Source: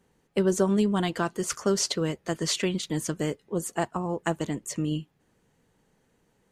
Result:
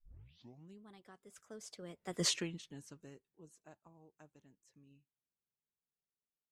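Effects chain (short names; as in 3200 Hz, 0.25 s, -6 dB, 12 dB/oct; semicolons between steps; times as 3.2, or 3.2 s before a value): tape start at the beginning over 0.94 s; Doppler pass-by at 2.26, 32 m/s, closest 1.9 m; gain -4 dB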